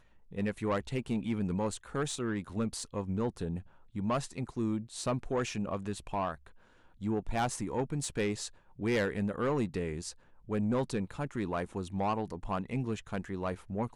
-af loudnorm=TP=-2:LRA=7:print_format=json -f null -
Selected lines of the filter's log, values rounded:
"input_i" : "-35.0",
"input_tp" : "-22.6",
"input_lra" : "2.4",
"input_thresh" : "-45.1",